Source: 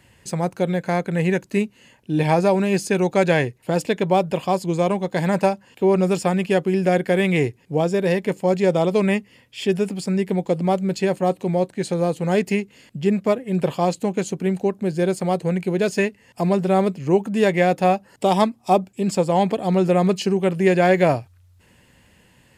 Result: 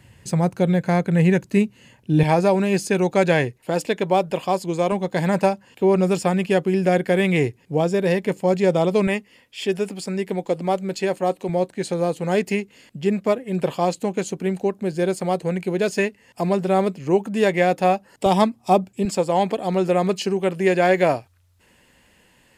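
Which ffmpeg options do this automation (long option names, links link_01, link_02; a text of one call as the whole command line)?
ffmpeg -i in.wav -af "asetnsamples=nb_out_samples=441:pad=0,asendcmd='2.23 equalizer g -0.5;3.58 equalizer g -7;4.92 equalizer g 0;9.07 equalizer g -11;11.49 equalizer g -5;18.26 equalizer g 2.5;19.05 equalizer g -8.5',equalizer=frequency=110:width_type=o:width=1.7:gain=8" out.wav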